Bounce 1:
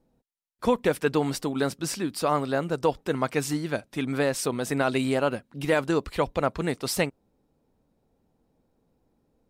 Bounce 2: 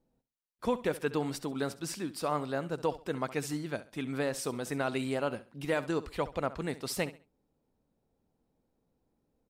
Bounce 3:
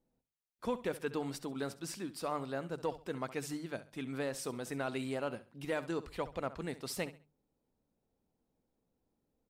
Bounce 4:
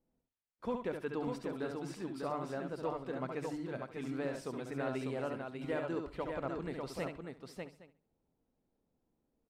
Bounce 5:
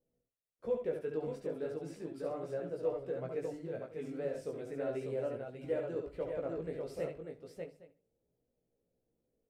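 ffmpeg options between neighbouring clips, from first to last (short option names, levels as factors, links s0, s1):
-af "aecho=1:1:67|134|201:0.158|0.0444|0.0124,volume=0.422"
-filter_complex "[0:a]bandreject=f=50:t=h:w=6,bandreject=f=100:t=h:w=6,bandreject=f=150:t=h:w=6,asplit=2[s0][s1];[s1]asoftclip=type=hard:threshold=0.0335,volume=0.251[s2];[s0][s2]amix=inputs=2:normalize=0,volume=0.473"
-filter_complex "[0:a]lowpass=f=2000:p=1,asplit=2[s0][s1];[s1]aecho=0:1:70|596|814:0.531|0.596|0.112[s2];[s0][s2]amix=inputs=2:normalize=0,volume=0.841"
-af "flanger=delay=16.5:depth=2.8:speed=0.35,equalizer=f=125:t=o:w=1:g=4,equalizer=f=250:t=o:w=1:g=-4,equalizer=f=500:t=o:w=1:g=11,equalizer=f=1000:t=o:w=1:g=-10,equalizer=f=4000:t=o:w=1:g=-5,volume=0.891"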